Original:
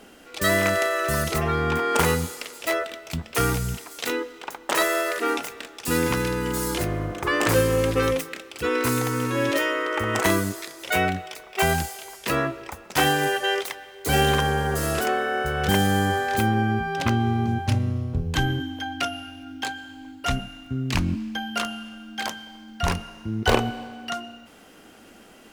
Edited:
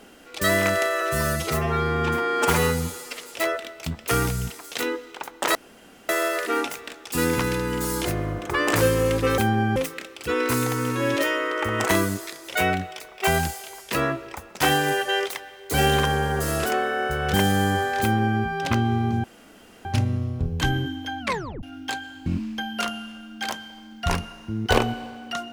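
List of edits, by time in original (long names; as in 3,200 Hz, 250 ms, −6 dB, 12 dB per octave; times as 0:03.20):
0:01.01–0:02.47: time-stretch 1.5×
0:04.82: splice in room tone 0.54 s
0:16.37–0:16.75: duplicate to 0:08.11
0:17.59: splice in room tone 0.61 s
0:18.94: tape stop 0.43 s
0:20.00–0:21.03: remove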